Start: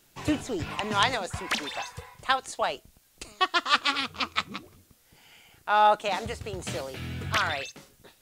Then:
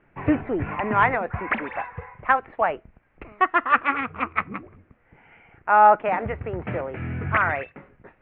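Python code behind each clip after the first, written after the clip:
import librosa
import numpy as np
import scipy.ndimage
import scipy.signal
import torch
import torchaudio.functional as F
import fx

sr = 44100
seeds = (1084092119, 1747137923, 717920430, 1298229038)

y = scipy.signal.sosfilt(scipy.signal.butter(8, 2300.0, 'lowpass', fs=sr, output='sos'), x)
y = y * 10.0 ** (6.0 / 20.0)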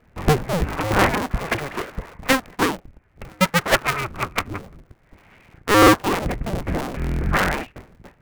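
y = fx.cycle_switch(x, sr, every=2, mode='inverted')
y = fx.low_shelf(y, sr, hz=270.0, db=8.5)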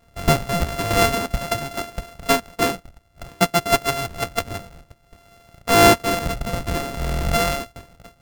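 y = np.r_[np.sort(x[:len(x) // 64 * 64].reshape(-1, 64), axis=1).ravel(), x[len(x) // 64 * 64:]]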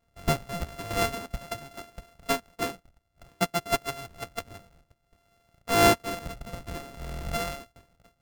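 y = fx.upward_expand(x, sr, threshold_db=-27.0, expansion=1.5)
y = y * 10.0 ** (-6.5 / 20.0)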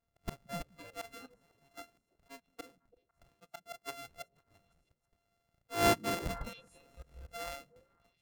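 y = fx.auto_swell(x, sr, attack_ms=470.0)
y = fx.echo_stepped(y, sr, ms=167, hz=170.0, octaves=1.4, feedback_pct=70, wet_db=-8)
y = fx.noise_reduce_blind(y, sr, reduce_db=13)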